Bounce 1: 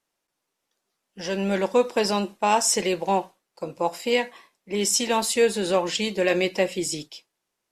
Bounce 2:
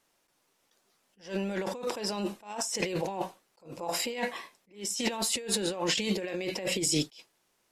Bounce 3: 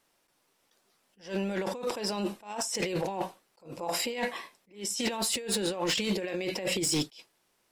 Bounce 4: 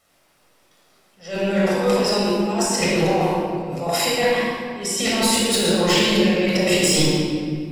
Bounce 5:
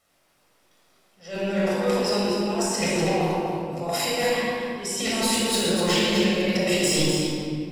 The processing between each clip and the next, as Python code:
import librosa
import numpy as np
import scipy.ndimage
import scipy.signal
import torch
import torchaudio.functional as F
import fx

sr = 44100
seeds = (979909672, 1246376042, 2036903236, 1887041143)

y1 = fx.over_compress(x, sr, threshold_db=-32.0, ratio=-1.0)
y1 = fx.attack_slew(y1, sr, db_per_s=180.0)
y2 = fx.peak_eq(y1, sr, hz=6600.0, db=-3.5, octaves=0.22)
y2 = np.clip(y2, -10.0 ** (-24.0 / 20.0), 10.0 ** (-24.0 / 20.0))
y2 = y2 * 10.0 ** (1.0 / 20.0)
y3 = fx.room_shoebox(y2, sr, seeds[0], volume_m3=4000.0, walls='mixed', distance_m=6.5)
y3 = y3 * 10.0 ** (4.5 / 20.0)
y4 = y3 + 10.0 ** (-7.0 / 20.0) * np.pad(y3, (int(248 * sr / 1000.0), 0))[:len(y3)]
y4 = y4 * 10.0 ** (-5.0 / 20.0)